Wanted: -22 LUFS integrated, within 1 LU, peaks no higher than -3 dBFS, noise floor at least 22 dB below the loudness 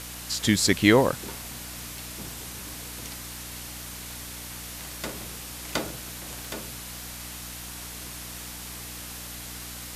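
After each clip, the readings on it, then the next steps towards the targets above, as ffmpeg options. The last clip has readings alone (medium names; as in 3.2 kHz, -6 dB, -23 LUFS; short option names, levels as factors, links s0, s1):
hum 60 Hz; highest harmonic 300 Hz; hum level -42 dBFS; noise floor -39 dBFS; noise floor target -52 dBFS; loudness -30.0 LUFS; peak level -4.0 dBFS; loudness target -22.0 LUFS
-> -af "bandreject=f=60:t=h:w=4,bandreject=f=120:t=h:w=4,bandreject=f=180:t=h:w=4,bandreject=f=240:t=h:w=4,bandreject=f=300:t=h:w=4"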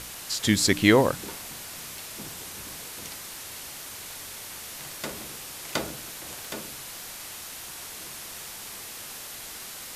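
hum not found; noise floor -40 dBFS; noise floor target -52 dBFS
-> -af "afftdn=nr=12:nf=-40"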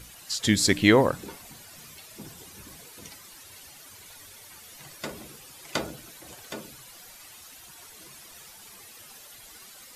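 noise floor -49 dBFS; loudness -25.0 LUFS; peak level -4.0 dBFS; loudness target -22.0 LUFS
-> -af "volume=1.41,alimiter=limit=0.708:level=0:latency=1"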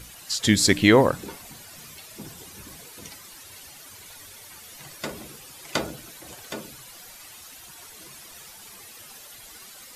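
loudness -22.5 LUFS; peak level -3.0 dBFS; noise floor -46 dBFS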